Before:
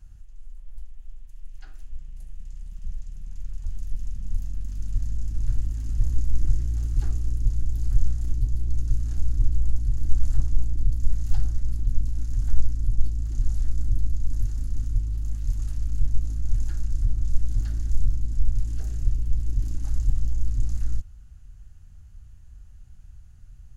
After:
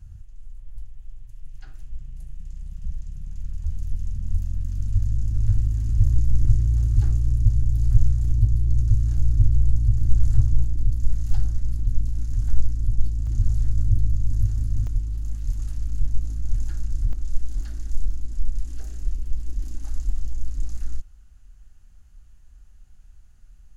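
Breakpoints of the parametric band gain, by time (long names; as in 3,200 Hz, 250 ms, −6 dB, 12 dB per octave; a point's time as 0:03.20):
parametric band 100 Hz 1.5 octaves
+12 dB
from 0:10.65 +4 dB
from 0:13.27 +10.5 dB
from 0:14.87 −0.5 dB
from 0:17.13 −12 dB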